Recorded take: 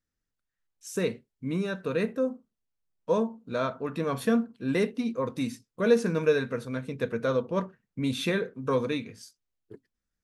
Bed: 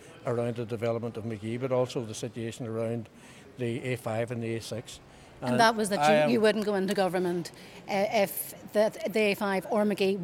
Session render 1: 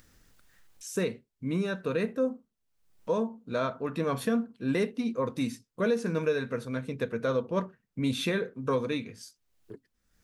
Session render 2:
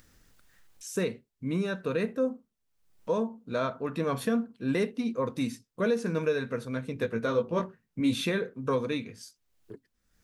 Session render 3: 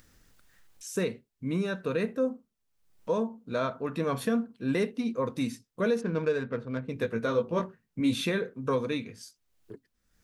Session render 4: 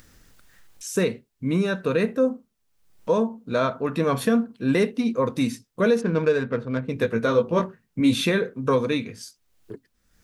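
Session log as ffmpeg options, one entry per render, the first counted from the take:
-af "alimiter=limit=-18dB:level=0:latency=1:release=299,acompressor=mode=upward:threshold=-40dB:ratio=2.5"
-filter_complex "[0:a]asettb=1/sr,asplit=3[a][b][c];[a]atrim=end=6.944[d];[b]atrim=start=6.94:end=8.21,asetpts=PTS-STARTPTS,afade=t=in:d=0.004:c=qsin,afade=t=out:st=1.266:d=0.004:c=qsin,asplit=2[e][f];[f]adelay=18,volume=-4dB[g];[e][g]amix=inputs=2:normalize=0,atrim=end_sample=56007[h];[c]atrim=start=8.206[i];[d][h]acrossfade=d=0.004:c1=hsin:c2=qsin[j];[j][i]acrossfade=d=0.004:c1=qsin:c2=hsin"
-filter_complex "[0:a]asplit=3[a][b][c];[a]afade=t=out:st=6:d=0.02[d];[b]adynamicsmooth=sensitivity=4:basefreq=1.6k,afade=t=in:st=6:d=0.02,afade=t=out:st=6.88:d=0.02[e];[c]afade=t=in:st=6.88:d=0.02[f];[d][e][f]amix=inputs=3:normalize=0"
-af "volume=7dB"

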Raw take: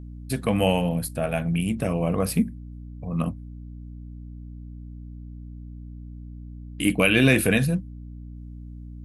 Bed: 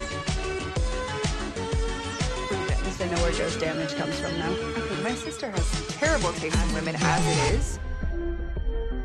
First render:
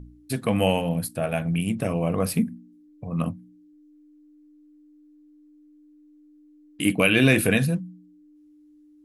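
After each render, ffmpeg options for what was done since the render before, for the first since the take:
-af "bandreject=f=60:t=h:w=4,bandreject=f=120:t=h:w=4,bandreject=f=180:t=h:w=4,bandreject=f=240:t=h:w=4"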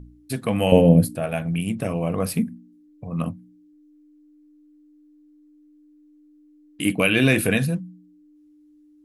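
-filter_complex "[0:a]asettb=1/sr,asplit=3[a][b][c];[a]atrim=end=0.724[d];[b]atrim=start=0.72:end=1.16,asetpts=PTS-STARTPTS,afade=t=in:d=0.004:c=qsin,afade=t=out:st=0.436:d=0.004:c=qsin,lowshelf=f=700:t=q:w=1.5:g=11.5[e];[c]atrim=start=1.156[f];[d][e]acrossfade=d=0.004:c1=hsin:c2=qsin[g];[g][f]acrossfade=d=0.004:c1=qsin:c2=hsin"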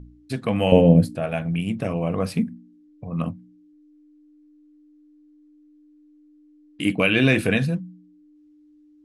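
-af "lowpass=6k"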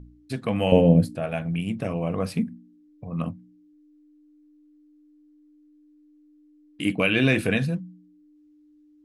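-af "volume=-2.5dB"

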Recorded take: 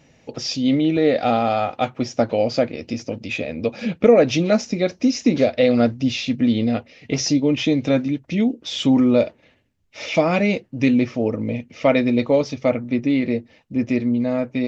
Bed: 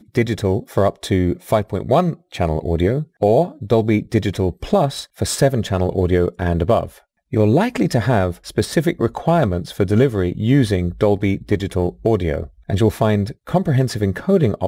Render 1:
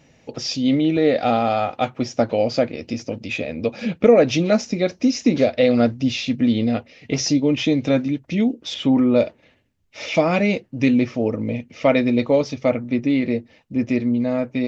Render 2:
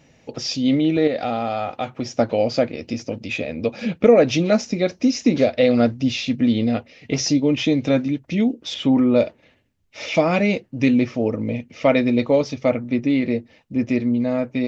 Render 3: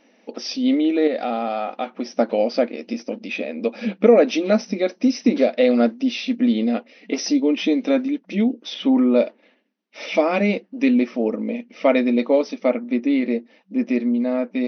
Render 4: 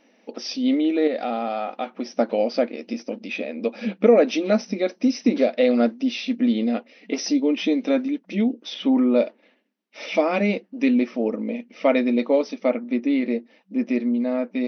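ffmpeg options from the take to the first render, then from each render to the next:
-filter_complex "[0:a]asettb=1/sr,asplit=3[a][b][c];[a]atrim=end=8.744[d];[b]atrim=start=8.74:end=9.16,asetpts=PTS-STARTPTS,afade=t=in:d=0.004:c=qsin,afade=t=out:st=0.416:d=0.004:c=qsin,bass=f=250:g=-2,treble=f=4k:g=-14[e];[c]atrim=start=9.156[f];[d][e]acrossfade=d=0.004:c1=hsin:c2=qsin[g];[g][f]acrossfade=d=0.004:c1=qsin:c2=hsin"
-filter_complex "[0:a]asettb=1/sr,asplit=3[a][b][c];[a]atrim=end=1.074[d];[b]atrim=start=1.07:end=2.08,asetpts=PTS-STARTPTS,afade=t=in:d=0.004:c=qsin,afade=t=out:st=1.006:d=0.004:c=qsin,acompressor=threshold=-21dB:ratio=2.5:attack=3.2:release=140:knee=1:detection=peak[e];[c]atrim=start=2.076[f];[d][e]acrossfade=d=0.004:c1=hsin:c2=qsin[g];[g][f]acrossfade=d=0.004:c1=qsin:c2=hsin"
-af "afftfilt=real='re*between(b*sr/4096,190,6200)':imag='im*between(b*sr/4096,190,6200)':win_size=4096:overlap=0.75,highshelf=f=4k:g=-5.5"
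-af "volume=-2dB"

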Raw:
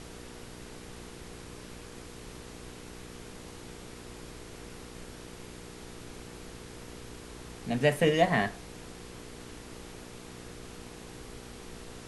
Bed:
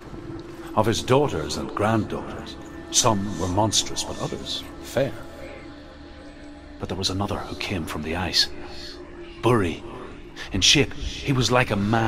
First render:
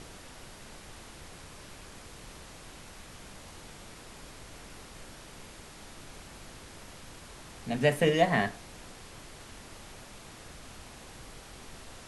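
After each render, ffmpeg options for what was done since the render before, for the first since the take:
-af "bandreject=f=60:t=h:w=4,bandreject=f=120:t=h:w=4,bandreject=f=180:t=h:w=4,bandreject=f=240:t=h:w=4,bandreject=f=300:t=h:w=4,bandreject=f=360:t=h:w=4,bandreject=f=420:t=h:w=4,bandreject=f=480:t=h:w=4"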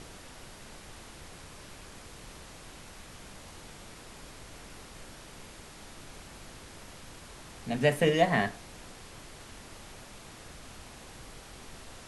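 -af anull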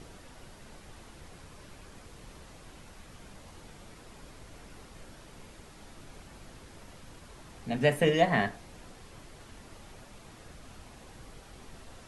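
-af "afftdn=nr=6:nf=-49"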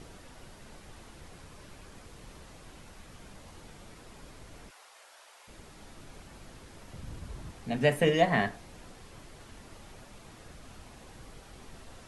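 -filter_complex "[0:a]asplit=3[a][b][c];[a]afade=t=out:st=4.69:d=0.02[d];[b]highpass=f=630:w=0.5412,highpass=f=630:w=1.3066,afade=t=in:st=4.69:d=0.02,afade=t=out:st=5.47:d=0.02[e];[c]afade=t=in:st=5.47:d=0.02[f];[d][e][f]amix=inputs=3:normalize=0,asettb=1/sr,asplit=3[g][h][i];[g]atrim=end=6.934[j];[h]atrim=start=6.93:end=7.51,asetpts=PTS-STARTPTS,afade=t=in:d=0.004:c=qsin,afade=t=out:st=0.576:d=0.004:c=qsin,equalizer=f=66:w=0.33:g=12.5[k];[i]atrim=start=7.506[l];[j][k]acrossfade=d=0.004:c1=hsin:c2=qsin[m];[m][l]acrossfade=d=0.004:c1=qsin:c2=hsin"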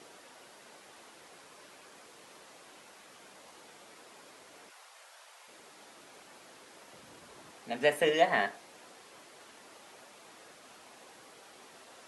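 -af "highpass=400"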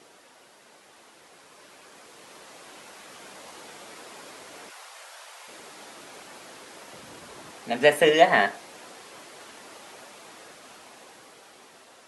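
-af "dynaudnorm=f=670:g=7:m=10dB"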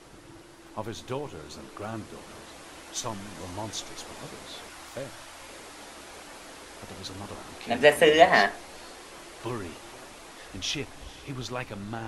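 -filter_complex "[1:a]volume=-15dB[a];[0:a][a]amix=inputs=2:normalize=0"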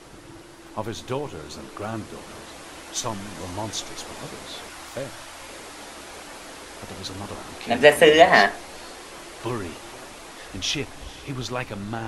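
-af "volume=5dB,alimiter=limit=-1dB:level=0:latency=1"

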